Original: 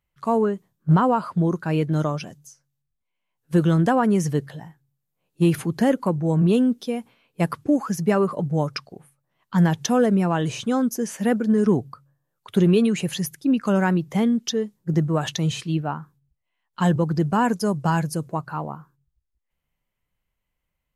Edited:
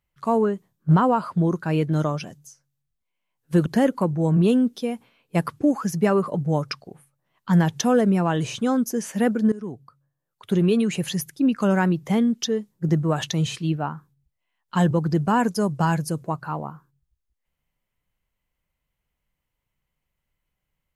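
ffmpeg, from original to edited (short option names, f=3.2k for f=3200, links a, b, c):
-filter_complex "[0:a]asplit=3[a][b][c];[a]atrim=end=3.662[d];[b]atrim=start=5.708:end=11.57,asetpts=PTS-STARTPTS,afade=t=out:st=5.858:d=0.004:c=hsin:silence=0.11885[e];[c]atrim=start=11.57,asetpts=PTS-STARTPTS,afade=t=in:d=1.55:silence=0.11885[f];[e][f]concat=n=2:v=0:a=1[g];[d][g]acrossfade=d=0.004:c1=hsin:c2=hsin"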